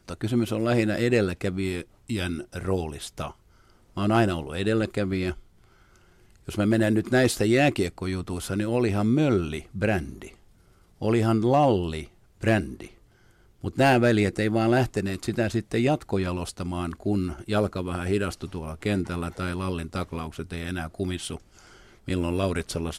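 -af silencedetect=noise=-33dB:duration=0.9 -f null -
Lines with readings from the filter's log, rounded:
silence_start: 5.33
silence_end: 6.48 | silence_duration: 1.15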